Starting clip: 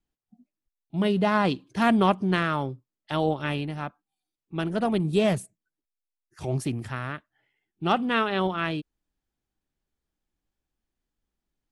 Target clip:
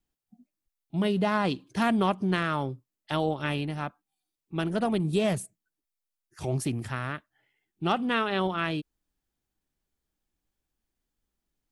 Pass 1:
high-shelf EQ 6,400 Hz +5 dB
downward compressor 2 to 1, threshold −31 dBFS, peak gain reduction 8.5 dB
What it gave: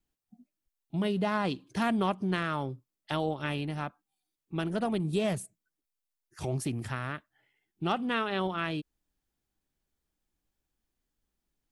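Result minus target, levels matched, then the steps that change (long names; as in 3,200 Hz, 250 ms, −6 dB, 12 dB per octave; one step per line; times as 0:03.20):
downward compressor: peak gain reduction +3.5 dB
change: downward compressor 2 to 1, threshold −24 dBFS, peak gain reduction 5 dB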